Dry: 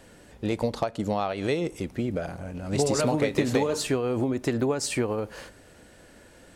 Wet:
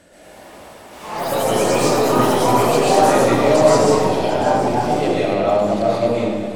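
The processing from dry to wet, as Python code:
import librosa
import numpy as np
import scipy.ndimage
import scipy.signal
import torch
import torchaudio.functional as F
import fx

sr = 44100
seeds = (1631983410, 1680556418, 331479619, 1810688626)

p1 = np.flip(x).copy()
p2 = fx.highpass(p1, sr, hz=88.0, slope=6)
p3 = fx.peak_eq(p2, sr, hz=610.0, db=8.0, octaves=0.3)
p4 = 10.0 ** (-28.0 / 20.0) * np.tanh(p3 / 10.0 ** (-28.0 / 20.0))
p5 = p3 + F.gain(torch.from_numpy(p4), -7.5).numpy()
p6 = fx.echo_swing(p5, sr, ms=1229, ratio=1.5, feedback_pct=31, wet_db=-12.5)
p7 = fx.rev_freeverb(p6, sr, rt60_s=1.5, hf_ratio=0.75, predelay_ms=95, drr_db=-7.5)
p8 = fx.echo_pitch(p7, sr, ms=125, semitones=4, count=3, db_per_echo=-3.0)
y = F.gain(torch.from_numpy(p8), -2.5).numpy()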